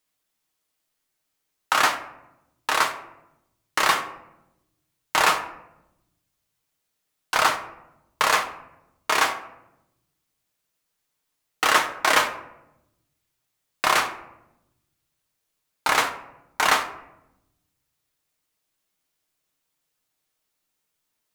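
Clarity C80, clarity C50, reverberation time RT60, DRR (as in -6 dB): 13.5 dB, 11.5 dB, 0.85 s, 3.5 dB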